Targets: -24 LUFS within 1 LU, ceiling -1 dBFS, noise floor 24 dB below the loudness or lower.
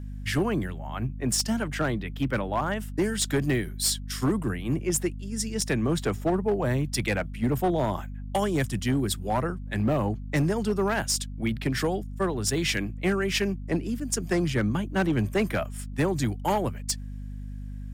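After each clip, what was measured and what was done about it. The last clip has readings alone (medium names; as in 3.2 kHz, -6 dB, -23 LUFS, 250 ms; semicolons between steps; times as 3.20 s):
clipped samples 1.1%; clipping level -18.5 dBFS; hum 50 Hz; highest harmonic 250 Hz; hum level -34 dBFS; loudness -27.5 LUFS; peak level -18.5 dBFS; loudness target -24.0 LUFS
-> clip repair -18.5 dBFS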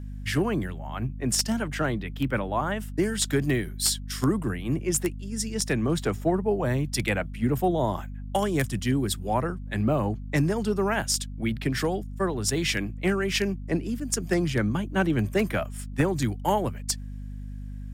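clipped samples 0.0%; hum 50 Hz; highest harmonic 250 Hz; hum level -34 dBFS
-> hum notches 50/100/150/200/250 Hz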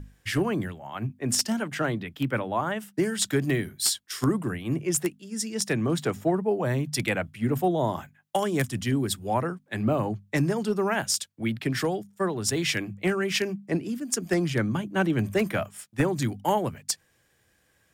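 hum not found; loudness -27.5 LUFS; peak level -9.0 dBFS; loudness target -24.0 LUFS
-> trim +3.5 dB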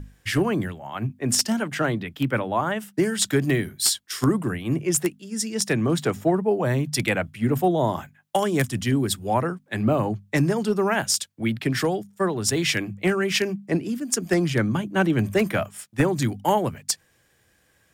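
loudness -24.0 LUFS; peak level -5.5 dBFS; noise floor -63 dBFS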